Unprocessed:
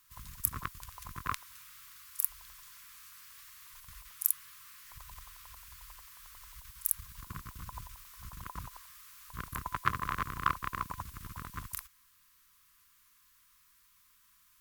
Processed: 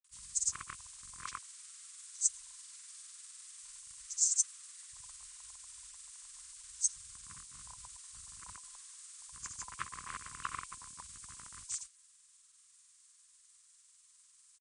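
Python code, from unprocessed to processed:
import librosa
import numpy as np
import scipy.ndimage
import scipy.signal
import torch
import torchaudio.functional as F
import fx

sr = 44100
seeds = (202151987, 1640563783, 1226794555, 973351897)

y = fx.freq_compress(x, sr, knee_hz=2200.0, ratio=1.5)
y = librosa.effects.preemphasis(y, coef=0.9, zi=[0.0])
y = fx.granulator(y, sr, seeds[0], grain_ms=100.0, per_s=20.0, spray_ms=100.0, spread_st=0)
y = y * 10.0 ** (5.0 / 20.0)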